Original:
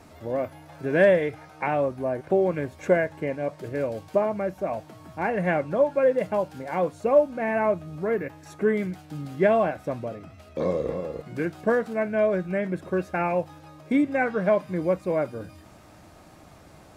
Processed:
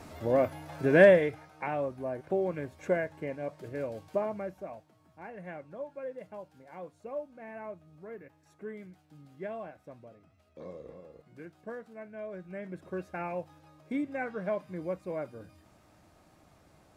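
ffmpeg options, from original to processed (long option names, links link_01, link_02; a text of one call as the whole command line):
ffmpeg -i in.wav -af "volume=10dB,afade=type=out:start_time=0.85:duration=0.64:silence=0.316228,afade=type=out:start_time=4.32:duration=0.54:silence=0.281838,afade=type=in:start_time=12.24:duration=0.69:silence=0.398107" out.wav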